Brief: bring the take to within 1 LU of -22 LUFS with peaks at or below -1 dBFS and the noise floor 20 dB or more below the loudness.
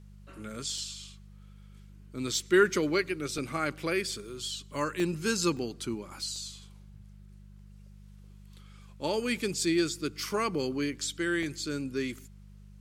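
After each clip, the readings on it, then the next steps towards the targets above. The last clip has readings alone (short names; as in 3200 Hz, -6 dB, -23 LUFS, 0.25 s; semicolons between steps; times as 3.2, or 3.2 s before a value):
dropouts 6; longest dropout 1.8 ms; hum 50 Hz; harmonics up to 200 Hz; hum level -48 dBFS; loudness -31.0 LUFS; peak -10.0 dBFS; loudness target -22.0 LUFS
-> interpolate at 0.78/3.38/5/5.57/6.36/11.43, 1.8 ms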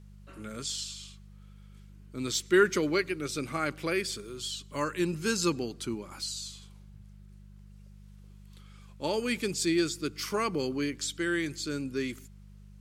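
dropouts 0; hum 50 Hz; harmonics up to 200 Hz; hum level -48 dBFS
-> de-hum 50 Hz, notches 4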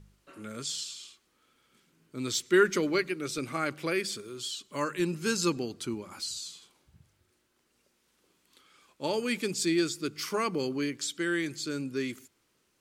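hum none; loudness -31.0 LUFS; peak -10.5 dBFS; loudness target -22.0 LUFS
-> gain +9 dB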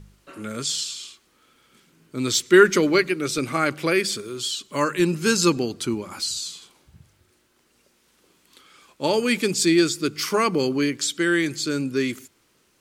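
loudness -22.0 LUFS; peak -1.5 dBFS; noise floor -64 dBFS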